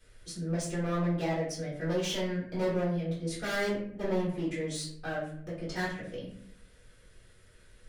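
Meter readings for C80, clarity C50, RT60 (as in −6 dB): 8.0 dB, 4.5 dB, 0.60 s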